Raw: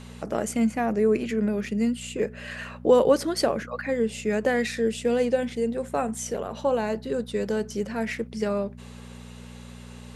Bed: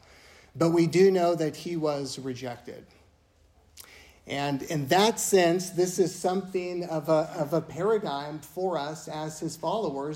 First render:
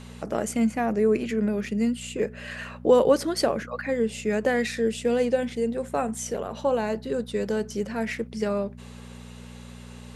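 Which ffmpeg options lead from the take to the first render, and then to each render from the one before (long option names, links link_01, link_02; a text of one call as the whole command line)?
ffmpeg -i in.wav -af anull out.wav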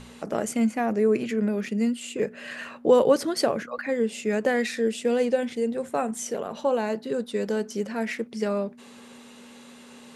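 ffmpeg -i in.wav -af "bandreject=frequency=60:width_type=h:width=4,bandreject=frequency=120:width_type=h:width=4,bandreject=frequency=180:width_type=h:width=4" out.wav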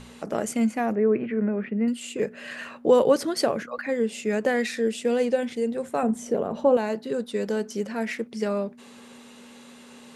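ffmpeg -i in.wav -filter_complex "[0:a]asettb=1/sr,asplit=3[link_01][link_02][link_03];[link_01]atrim=end=0.954[link_04];[link_02]atrim=start=0.95:end=1.88,asetpts=PTS-STARTPTS,afade=type=in:duration=0.004:curve=qsin,afade=type=out:start_time=0.926:duration=0.004:curve=qsin,lowpass=frequency=2200:width=0.5412,lowpass=frequency=2200:width=1.3066[link_05];[link_03]atrim=start=1.876[link_06];[link_04][link_05]acrossfade=duration=0.004:curve1=hsin:curve2=qsin[link_07];[link_07][link_06]acrossfade=duration=0.004:curve1=qsin:curve2=hsin,asettb=1/sr,asplit=3[link_08][link_09][link_10];[link_08]atrim=end=6.034[link_11];[link_09]atrim=start=6.03:end=6.77,asetpts=PTS-STARTPTS,afade=type=in:duration=0.004:curve=qsin,afade=type=out:start_time=0.736:duration=0.004:curve=qsin,tiltshelf=frequency=1100:gain=8[link_12];[link_10]atrim=start=6.766[link_13];[link_11][link_12]acrossfade=duration=0.004:curve1=hsin:curve2=qsin[link_14];[link_14][link_13]acrossfade=duration=0.004:curve1=qsin:curve2=hsin" out.wav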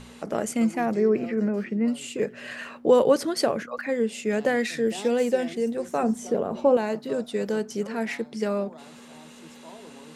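ffmpeg -i in.wav -i bed.wav -filter_complex "[1:a]volume=-17.5dB[link_01];[0:a][link_01]amix=inputs=2:normalize=0" out.wav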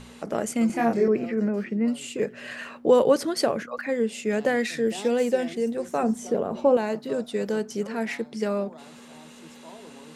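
ffmpeg -i in.wav -filter_complex "[0:a]asettb=1/sr,asplit=3[link_01][link_02][link_03];[link_01]atrim=end=0.674[link_04];[link_02]atrim=start=0.67:end=1.08,asetpts=PTS-STARTPTS,afade=type=in:duration=0.004:curve=qsin,afade=type=out:start_time=0.406:duration=0.004:curve=qsin,asplit=2[link_05][link_06];[link_06]adelay=26,volume=-2dB[link_07];[link_05][link_07]amix=inputs=2:normalize=0,atrim=end_sample=18081[link_08];[link_03]atrim=start=1.076[link_09];[link_04][link_08]acrossfade=duration=0.004:curve1=hsin:curve2=qsin[link_10];[link_10][link_09]acrossfade=duration=0.004:curve1=qsin:curve2=hsin" out.wav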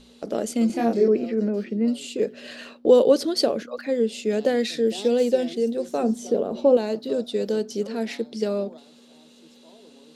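ffmpeg -i in.wav -af "agate=range=-7dB:threshold=-40dB:ratio=16:detection=peak,equalizer=frequency=125:width_type=o:width=1:gain=-10,equalizer=frequency=250:width_type=o:width=1:gain=4,equalizer=frequency=500:width_type=o:width=1:gain=4,equalizer=frequency=1000:width_type=o:width=1:gain=-6,equalizer=frequency=2000:width_type=o:width=1:gain=-7,equalizer=frequency=4000:width_type=o:width=1:gain=9,equalizer=frequency=8000:width_type=o:width=1:gain=-3" out.wav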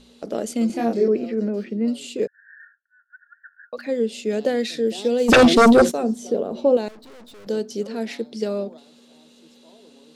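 ffmpeg -i in.wav -filter_complex "[0:a]asettb=1/sr,asplit=3[link_01][link_02][link_03];[link_01]atrim=end=2.274[link_04];[link_02]atrim=start=2.27:end=3.73,asetpts=PTS-STARTPTS,afade=type=in:duration=0.004:curve=qsin,afade=type=out:start_time=1.456:duration=0.004:curve=qsin,asuperpass=centerf=1600:order=20:qfactor=3.6[link_05];[link_03]atrim=start=3.726[link_06];[link_04][link_05]acrossfade=duration=0.004:curve1=hsin:curve2=qsin[link_07];[link_07][link_06]acrossfade=duration=0.004:curve1=qsin:curve2=hsin,asplit=3[link_08][link_09][link_10];[link_08]afade=type=out:start_time=5.28:duration=0.02[link_11];[link_09]aeval=exprs='0.398*sin(PI/2*5.62*val(0)/0.398)':channel_layout=same,afade=type=in:start_time=5.28:duration=0.02,afade=type=out:start_time=5.9:duration=0.02[link_12];[link_10]afade=type=in:start_time=5.9:duration=0.02[link_13];[link_11][link_12][link_13]amix=inputs=3:normalize=0,asettb=1/sr,asplit=3[link_14][link_15][link_16];[link_14]atrim=end=6.884[link_17];[link_15]atrim=start=6.88:end=7.47,asetpts=PTS-STARTPTS,afade=type=in:duration=0.004:curve=qsin,afade=type=out:start_time=0.586:duration=0.004:curve=qsin,aeval=exprs='(tanh(158*val(0)+0.7)-tanh(0.7))/158':channel_layout=same[link_18];[link_16]atrim=start=7.466[link_19];[link_17][link_18]acrossfade=duration=0.004:curve1=hsin:curve2=qsin[link_20];[link_20][link_19]acrossfade=duration=0.004:curve1=qsin:curve2=hsin" out.wav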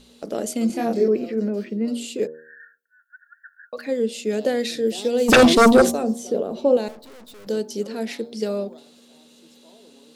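ffmpeg -i in.wav -af "highshelf=frequency=10000:gain=10.5,bandreject=frequency=78.28:width_type=h:width=4,bandreject=frequency=156.56:width_type=h:width=4,bandreject=frequency=234.84:width_type=h:width=4,bandreject=frequency=313.12:width_type=h:width=4,bandreject=frequency=391.4:width_type=h:width=4,bandreject=frequency=469.68:width_type=h:width=4,bandreject=frequency=547.96:width_type=h:width=4,bandreject=frequency=626.24:width_type=h:width=4,bandreject=frequency=704.52:width_type=h:width=4,bandreject=frequency=782.8:width_type=h:width=4,bandreject=frequency=861.08:width_type=h:width=4,bandreject=frequency=939.36:width_type=h:width=4,bandreject=frequency=1017.64:width_type=h:width=4,bandreject=frequency=1095.92:width_type=h:width=4,bandreject=frequency=1174.2:width_type=h:width=4" out.wav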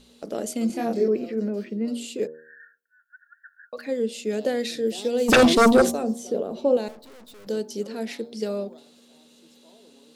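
ffmpeg -i in.wav -af "volume=-3dB" out.wav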